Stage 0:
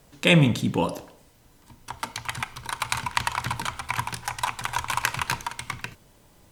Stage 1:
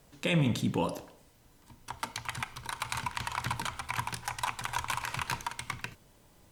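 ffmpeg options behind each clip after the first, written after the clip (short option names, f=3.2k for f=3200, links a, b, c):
-af "alimiter=limit=-14dB:level=0:latency=1:release=45,volume=-4.5dB"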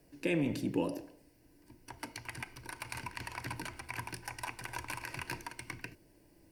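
-filter_complex "[0:a]equalizer=f=380:t=o:w=0.87:g=3.5,acrossover=split=250[a][b];[a]asoftclip=type=tanh:threshold=-32.5dB[c];[c][b]amix=inputs=2:normalize=0,superequalizer=6b=2.51:9b=0.631:10b=0.355:13b=0.355:15b=0.501,volume=-5dB"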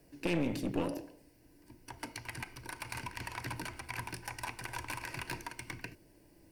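-af "aeval=exprs='clip(val(0),-1,0.0141)':c=same,volume=1.5dB"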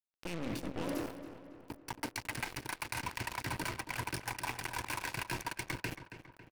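-filter_complex "[0:a]areverse,acompressor=threshold=-46dB:ratio=8,areverse,acrusher=bits=7:mix=0:aa=0.5,asplit=2[a][b];[b]adelay=275,lowpass=f=3.3k:p=1,volume=-11dB,asplit=2[c][d];[d]adelay=275,lowpass=f=3.3k:p=1,volume=0.54,asplit=2[e][f];[f]adelay=275,lowpass=f=3.3k:p=1,volume=0.54,asplit=2[g][h];[h]adelay=275,lowpass=f=3.3k:p=1,volume=0.54,asplit=2[i][j];[j]adelay=275,lowpass=f=3.3k:p=1,volume=0.54,asplit=2[k][l];[l]adelay=275,lowpass=f=3.3k:p=1,volume=0.54[m];[a][c][e][g][i][k][m]amix=inputs=7:normalize=0,volume=10.5dB"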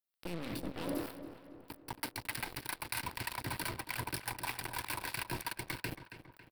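-filter_complex "[0:a]aexciter=amount=1.2:drive=4.1:freq=3.6k,acrossover=split=1000[a][b];[a]aeval=exprs='val(0)*(1-0.5/2+0.5/2*cos(2*PI*3.2*n/s))':c=same[c];[b]aeval=exprs='val(0)*(1-0.5/2-0.5/2*cos(2*PI*3.2*n/s))':c=same[d];[c][d]amix=inputs=2:normalize=0,volume=1dB"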